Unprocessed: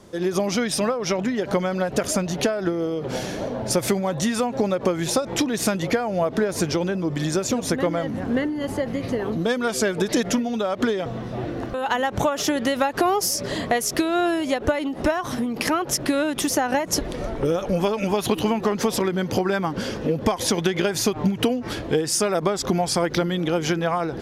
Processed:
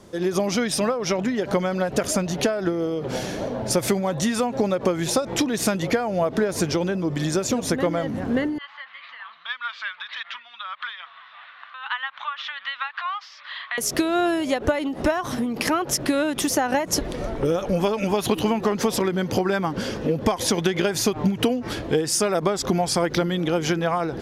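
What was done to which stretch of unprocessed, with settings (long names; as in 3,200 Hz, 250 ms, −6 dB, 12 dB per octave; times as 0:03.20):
0:08.58–0:13.78: elliptic band-pass filter 1,100–3,700 Hz, stop band 50 dB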